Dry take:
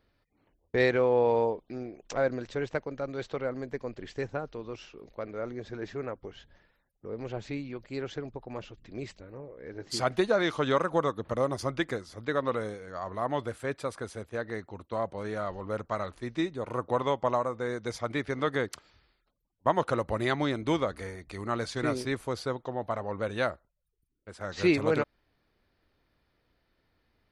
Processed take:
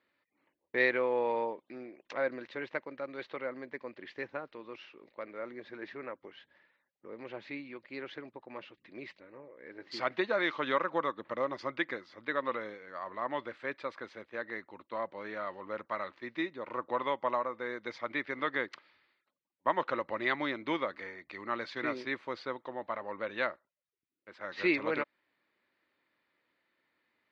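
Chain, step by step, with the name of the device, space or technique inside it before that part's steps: phone earpiece (cabinet simulation 370–3800 Hz, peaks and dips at 440 Hz -8 dB, 720 Hz -9 dB, 1.4 kHz -3 dB, 2 kHz +4 dB, 3.2 kHz -3 dB)

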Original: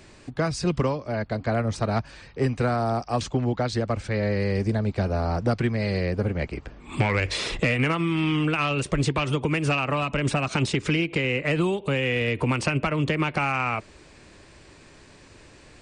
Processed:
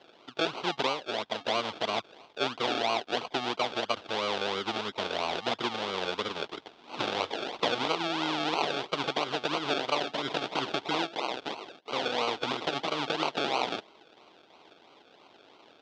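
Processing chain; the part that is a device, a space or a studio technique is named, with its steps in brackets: 11.14–11.93 s: steep high-pass 1.2 kHz 48 dB/octave; circuit-bent sampling toy (decimation with a swept rate 35×, swing 60% 3 Hz; cabinet simulation 500–4900 Hz, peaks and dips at 550 Hz -4 dB, 1.8 kHz -7 dB, 3.4 kHz +7 dB)

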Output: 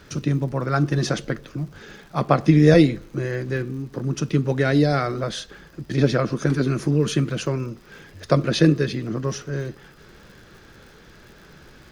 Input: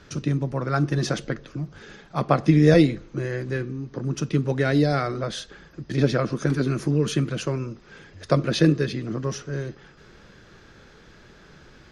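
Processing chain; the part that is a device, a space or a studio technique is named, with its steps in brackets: vinyl LP (crackle 100 per s -43 dBFS; pink noise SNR 42 dB); trim +2 dB

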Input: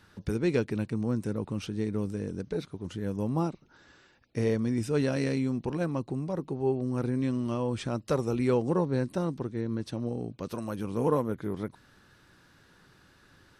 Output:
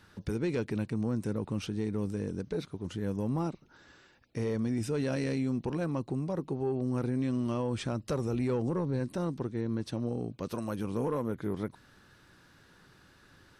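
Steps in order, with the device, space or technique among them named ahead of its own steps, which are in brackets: 7.92–9.00 s: bass shelf 160 Hz +5.5 dB; soft clipper into limiter (saturation -16.5 dBFS, distortion -23 dB; peak limiter -24 dBFS, peak gain reduction 6 dB)

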